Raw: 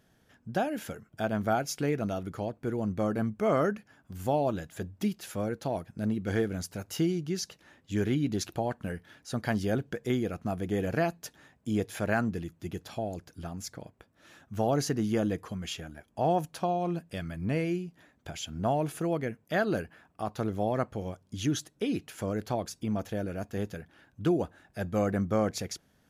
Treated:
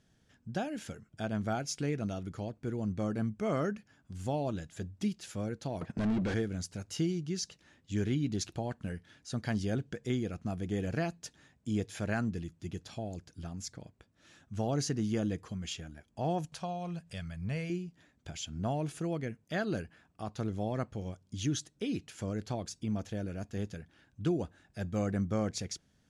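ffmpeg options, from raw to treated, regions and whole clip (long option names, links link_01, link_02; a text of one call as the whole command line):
ffmpeg -i in.wav -filter_complex "[0:a]asettb=1/sr,asplit=3[link_01][link_02][link_03];[link_01]atrim=end=5.814[link_04];[link_02]atrim=start=5.81:end=6.34,asetpts=PTS-STARTPTS,afade=type=in:duration=0.004:curve=qsin,afade=type=out:start_time=0.526:duration=0.004:curve=qsin,bandreject=frequency=50:width_type=h:width=6,bandreject=frequency=100:width_type=h:width=6,agate=range=-12dB:threshold=-50dB:ratio=16:release=100:detection=peak,asplit=2[link_05][link_06];[link_06]highpass=frequency=720:poles=1,volume=33dB,asoftclip=type=tanh:threshold=-20dB[link_07];[link_05][link_07]amix=inputs=2:normalize=0,lowpass=frequency=1100:poles=1,volume=-6dB[link_08];[link_03]atrim=start=6.336[link_09];[link_04][link_08]acrossfade=duration=0.004:curve1=hsin:curve2=qsin[link_10];[link_10][link_09]acrossfade=duration=0.004:curve1=qsin:curve2=hsin,asettb=1/sr,asplit=3[link_11][link_12][link_13];[link_11]atrim=end=16.524[link_14];[link_12]atrim=start=16.52:end=17.7,asetpts=PTS-STARTPTS,afade=type=in:duration=0.004:curve=qsin,afade=type=out:start_time=1.176:duration=0.004:curve=qsin,acompressor=mode=upward:threshold=-39dB:ratio=2.5:attack=3.2:release=140:knee=2.83:detection=peak,equalizer=frequency=300:width=2.1:gain=-14.5[link_15];[link_13]atrim=start=17.696[link_16];[link_14][link_15]acrossfade=duration=0.004:curve1=hsin:curve2=qsin[link_17];[link_17][link_16]acrossfade=duration=0.004:curve1=qsin:curve2=hsin,lowpass=frequency=8900:width=0.5412,lowpass=frequency=8900:width=1.3066,equalizer=frequency=830:width=0.37:gain=-8" out.wav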